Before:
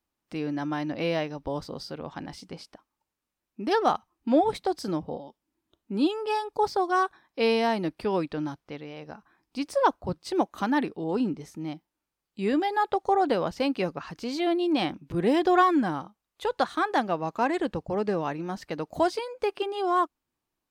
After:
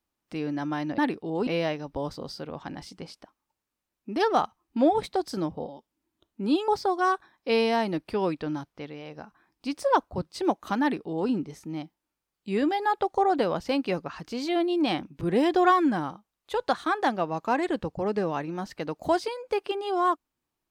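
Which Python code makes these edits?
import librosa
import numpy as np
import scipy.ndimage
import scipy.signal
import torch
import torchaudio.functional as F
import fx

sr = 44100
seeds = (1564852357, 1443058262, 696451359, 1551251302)

y = fx.edit(x, sr, fx.cut(start_s=6.19, length_s=0.4),
    fx.duplicate(start_s=10.72, length_s=0.49, to_s=0.98), tone=tone)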